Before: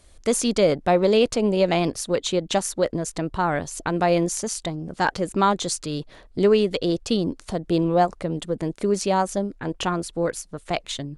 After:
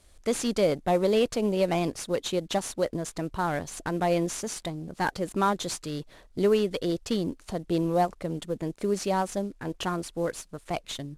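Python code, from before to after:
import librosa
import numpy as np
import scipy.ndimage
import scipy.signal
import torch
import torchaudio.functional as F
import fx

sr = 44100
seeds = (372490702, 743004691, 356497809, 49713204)

y = fx.cvsd(x, sr, bps=64000)
y = F.gain(torch.from_numpy(y), -5.0).numpy()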